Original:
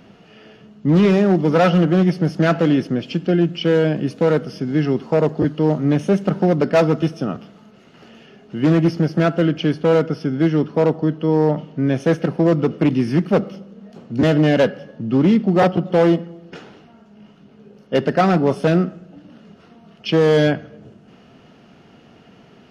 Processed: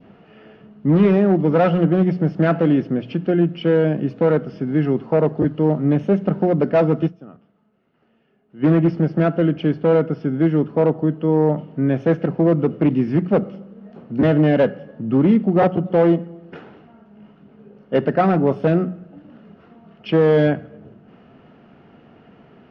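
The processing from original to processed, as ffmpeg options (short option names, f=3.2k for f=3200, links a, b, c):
-filter_complex "[0:a]asplit=3[a][b][c];[a]atrim=end=7.38,asetpts=PTS-STARTPTS,afade=t=out:st=7.06:d=0.32:c=exp:silence=0.141254[d];[b]atrim=start=7.38:end=8.32,asetpts=PTS-STARTPTS,volume=-17dB[e];[c]atrim=start=8.32,asetpts=PTS-STARTPTS,afade=t=in:d=0.32:c=exp:silence=0.141254[f];[d][e][f]concat=n=3:v=0:a=1,lowpass=2.1k,bandreject=f=60:t=h:w=6,bandreject=f=120:t=h:w=6,bandreject=f=180:t=h:w=6,adynamicequalizer=threshold=0.0178:dfrequency=1400:dqfactor=0.92:tfrequency=1400:tqfactor=0.92:attack=5:release=100:ratio=0.375:range=2:mode=cutabove:tftype=bell"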